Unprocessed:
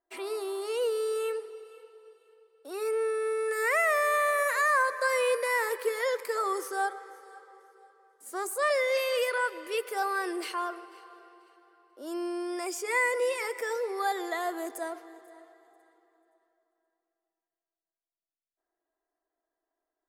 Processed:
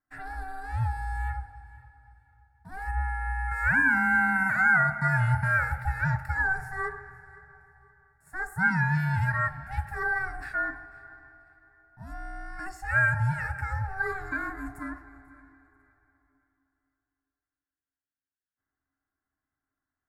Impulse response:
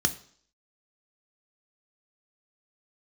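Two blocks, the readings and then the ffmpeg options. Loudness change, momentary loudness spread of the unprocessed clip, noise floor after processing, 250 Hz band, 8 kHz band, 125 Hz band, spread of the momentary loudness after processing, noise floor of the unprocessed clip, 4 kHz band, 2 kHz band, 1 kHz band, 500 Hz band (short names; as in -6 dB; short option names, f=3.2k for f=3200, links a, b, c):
+2.5 dB, 13 LU, under -85 dBFS, +4.0 dB, under -10 dB, n/a, 18 LU, under -85 dBFS, under -15 dB, +6.0 dB, 0.0 dB, -16.0 dB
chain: -filter_complex "[0:a]aeval=exprs='val(0)*sin(2*PI*380*n/s)':c=same,highshelf=f=2.2k:t=q:w=3:g=-12,asplit=2[a][b];[1:a]atrim=start_sample=2205[c];[b][c]afir=irnorm=-1:irlink=0,volume=-10.5dB[d];[a][d]amix=inputs=2:normalize=0"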